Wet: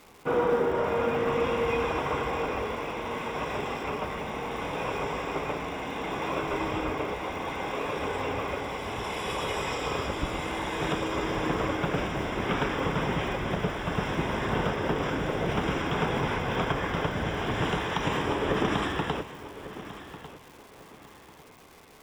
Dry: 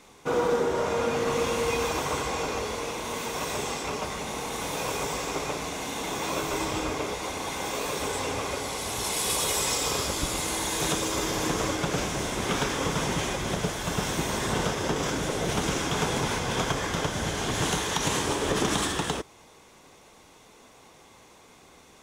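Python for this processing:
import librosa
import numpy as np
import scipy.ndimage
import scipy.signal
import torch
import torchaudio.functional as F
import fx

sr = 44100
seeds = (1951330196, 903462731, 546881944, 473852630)

p1 = scipy.signal.savgol_filter(x, 25, 4, mode='constant')
p2 = fx.dmg_crackle(p1, sr, seeds[0], per_s=570.0, level_db=-44.0)
y = p2 + fx.echo_feedback(p2, sr, ms=1147, feedback_pct=27, wet_db=-14.5, dry=0)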